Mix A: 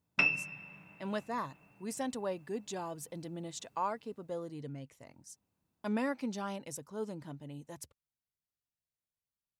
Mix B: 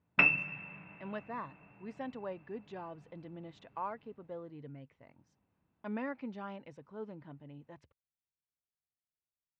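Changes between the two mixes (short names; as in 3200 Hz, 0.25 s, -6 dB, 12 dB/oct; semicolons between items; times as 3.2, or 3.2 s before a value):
background +9.0 dB; master: add ladder low-pass 3200 Hz, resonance 20%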